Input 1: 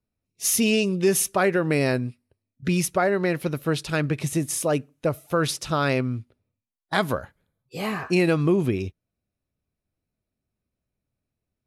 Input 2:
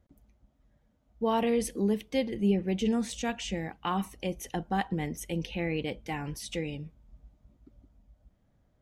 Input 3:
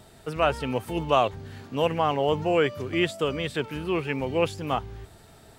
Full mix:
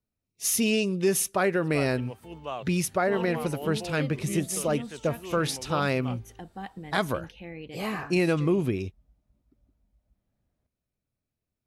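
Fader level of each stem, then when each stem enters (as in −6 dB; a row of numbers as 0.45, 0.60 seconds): −3.5, −9.5, −14.0 decibels; 0.00, 1.85, 1.35 seconds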